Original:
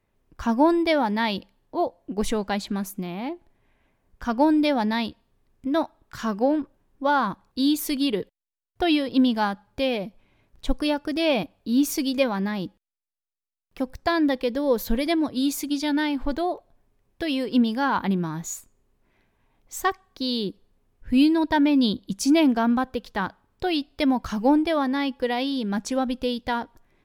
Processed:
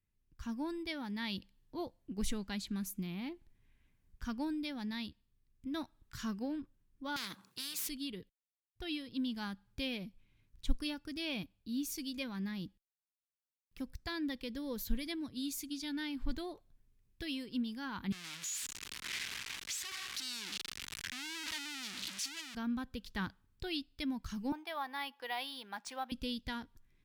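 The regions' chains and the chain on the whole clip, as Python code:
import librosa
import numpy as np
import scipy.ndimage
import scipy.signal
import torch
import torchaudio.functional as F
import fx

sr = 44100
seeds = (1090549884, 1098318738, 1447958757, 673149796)

y = fx.chain(x, sr, fx.halfwave_gain(db=-3.0),
    fx.highpass(hz=170.0, slope=24),
    fx.spectral_comp(ratio=4.0), at=(7.16, 7.89))
y = fx.chain(y, sr, fx.clip_1bit(),
    fx.bandpass_q(hz=2900.0, q=0.67), at=(18.12, 22.55))
y = fx.chain(y, sr, fx.highpass_res(hz=790.0, q=3.3),
    fx.peak_eq(hz=7200.0, db=-5.0, octaves=1.8),
    fx.resample_linear(factor=3), at=(24.52, 26.12))
y = fx.tone_stack(y, sr, knobs='6-0-2')
y = fx.rider(y, sr, range_db=4, speed_s=0.5)
y = y * librosa.db_to_amplitude(6.0)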